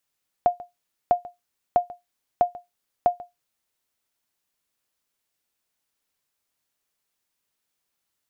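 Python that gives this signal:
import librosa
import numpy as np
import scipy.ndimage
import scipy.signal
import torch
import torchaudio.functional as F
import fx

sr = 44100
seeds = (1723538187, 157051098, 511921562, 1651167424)

y = fx.sonar_ping(sr, hz=708.0, decay_s=0.17, every_s=0.65, pings=5, echo_s=0.14, echo_db=-20.0, level_db=-9.5)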